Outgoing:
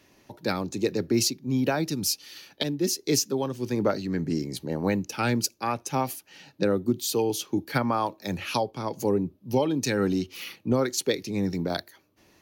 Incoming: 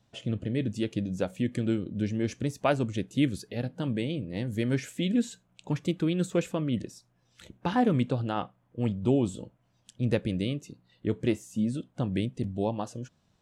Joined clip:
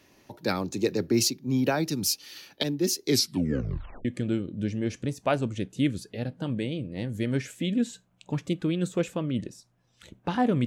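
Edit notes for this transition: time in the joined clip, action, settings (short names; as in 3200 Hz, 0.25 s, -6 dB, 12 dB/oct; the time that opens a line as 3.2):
outgoing
3.07 tape stop 0.98 s
4.05 switch to incoming from 1.43 s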